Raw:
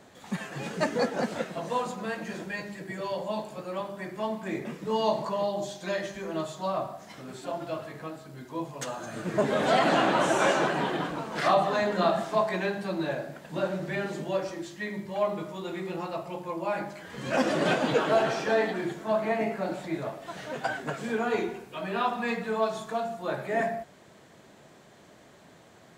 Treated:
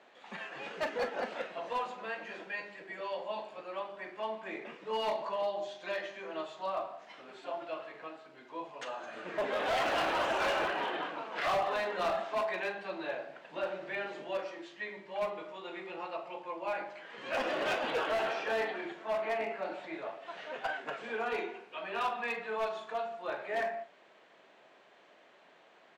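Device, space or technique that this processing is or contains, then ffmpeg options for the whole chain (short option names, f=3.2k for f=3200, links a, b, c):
megaphone: -filter_complex "[0:a]highpass=470,lowpass=3.4k,equalizer=f=2.7k:t=o:w=0.5:g=5,asoftclip=type=hard:threshold=-23.5dB,asplit=2[a][b];[b]adelay=41,volume=-12.5dB[c];[a][c]amix=inputs=2:normalize=0,volume=-4dB"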